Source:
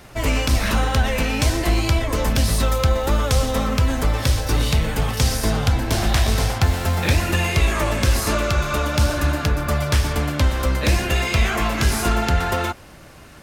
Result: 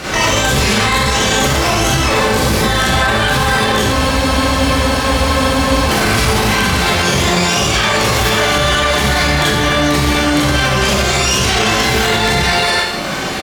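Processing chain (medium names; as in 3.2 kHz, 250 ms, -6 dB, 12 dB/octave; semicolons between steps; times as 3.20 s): low-pass 3.3 kHz 12 dB/octave; reverb removal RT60 0.58 s; high-pass 95 Hz 6 dB/octave; comb 5.2 ms, depth 45%; dynamic bell 300 Hz, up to -6 dB, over -45 dBFS, Q 4.7; compression 16:1, threshold -30 dBFS, peak gain reduction 14.5 dB; formant shift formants +5 st; thinning echo 99 ms, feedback 73%, high-pass 350 Hz, level -21.5 dB; harmony voices +12 st 0 dB; Schroeder reverb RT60 0.87 s, combs from 30 ms, DRR -8.5 dB; loudness maximiser +18.5 dB; spectral freeze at 3.94 s, 1.95 s; trim -3.5 dB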